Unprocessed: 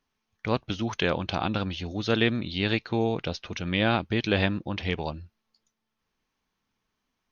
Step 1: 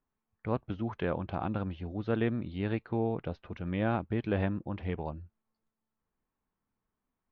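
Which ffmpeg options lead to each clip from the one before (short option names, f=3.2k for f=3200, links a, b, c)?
-af "lowpass=1.4k,lowshelf=f=140:g=3,volume=-5.5dB"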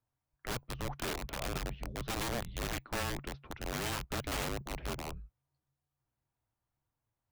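-af "aeval=exprs='(mod(26.6*val(0)+1,2)-1)/26.6':c=same,afreqshift=-140,volume=-2dB"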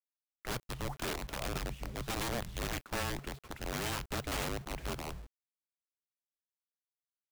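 -af "acrusher=bits=8:mix=0:aa=0.000001"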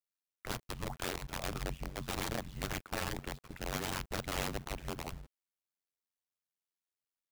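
-af "tremolo=f=91:d=0.974,volume=2.5dB"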